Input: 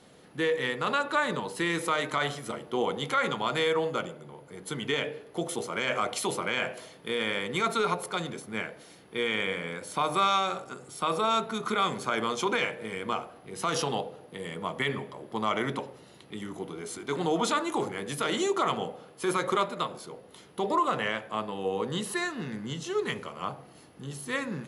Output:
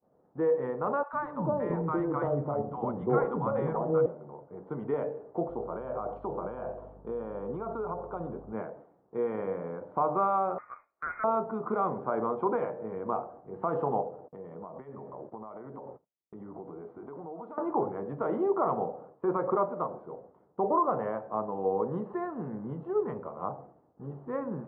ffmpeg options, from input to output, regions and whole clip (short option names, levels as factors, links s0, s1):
-filter_complex "[0:a]asettb=1/sr,asplit=3[s0][s1][s2];[s0]atrim=end=1.034[s3];[s1]atrim=start=1.03:end=4.06,asetpts=PTS-STARTPTS,afade=t=in:d=0.004:c=qsin,afade=t=out:st=3.026:d=0.004:c=qsin,lowshelf=f=250:g=11.5,acrossover=split=250|830[s4][s5][s6];[s4]adelay=100[s7];[s5]adelay=340[s8];[s7][s8][s6]amix=inputs=3:normalize=0,atrim=end_sample=133623[s9];[s2]atrim=start=4.056[s10];[s3][s9]acrossfade=d=0.004:c1=hsin:c2=qsin[s11];[s11][s10]acrossfade=d=0.004:c1=qsin:c2=hsin,asettb=1/sr,asplit=3[s12][s13][s14];[s12]atrim=end=5.494[s15];[s13]atrim=start=5.49:end=8.53,asetpts=PTS-STARTPTS,afade=t=in:d=0.004:c=qsin,afade=t=out:st=3.036:d=0.004:c=qsin,acompressor=threshold=0.0355:ratio=6:attack=3.2:release=140:knee=1:detection=peak,equalizer=f=2000:w=4.9:g=-13.5,aeval=exprs='val(0)+0.00355*(sin(2*PI*50*n/s)+sin(2*PI*2*50*n/s)/2+sin(2*PI*3*50*n/s)/3+sin(2*PI*4*50*n/s)/4+sin(2*PI*5*50*n/s)/5)':c=same[s16];[s14]atrim=start=8.526[s17];[s15][s16]acrossfade=d=0.004:c1=hsin:c2=qsin[s18];[s18][s17]acrossfade=d=0.004:c1=qsin:c2=hsin,asettb=1/sr,asplit=3[s19][s20][s21];[s19]atrim=end=10.584[s22];[s20]atrim=start=10.58:end=11.24,asetpts=PTS-STARTPTS,afade=t=in:d=0.004:c=qsin,afade=t=out:st=0.656:d=0.004:c=qsin,lowpass=f=2200:t=q:w=0.5098,lowpass=f=2200:t=q:w=0.6013,lowpass=f=2200:t=q:w=0.9,lowpass=f=2200:t=q:w=2.563,afreqshift=-2600,equalizer=f=1300:w=1.4:g=4.5[s23];[s21]atrim=start=11.236[s24];[s22][s23]acrossfade=d=0.004:c1=hsin:c2=qsin[s25];[s25][s24]acrossfade=d=0.004:c1=qsin:c2=hsin,asettb=1/sr,asplit=3[s26][s27][s28];[s26]atrim=end=14.284[s29];[s27]atrim=start=14.28:end=17.58,asetpts=PTS-STARTPTS,afade=t=in:d=0.004:c=qsin,afade=t=out:st=3.296:d=0.004:c=qsin,agate=range=0.0891:threshold=0.00316:ratio=16:release=100:detection=peak,acompressor=threshold=0.0126:ratio=20:attack=3.2:release=140:knee=1:detection=peak[s30];[s28]atrim=start=17.576[s31];[s29][s30]acrossfade=d=0.004:c1=hsin:c2=qsin[s32];[s32][s31]acrossfade=d=0.004:c1=qsin:c2=hsin,lowpass=f=1100:w=0.5412,lowpass=f=1100:w=1.3066,equalizer=f=680:w=0.91:g=5.5,agate=range=0.0224:threshold=0.00631:ratio=3:detection=peak,volume=0.794"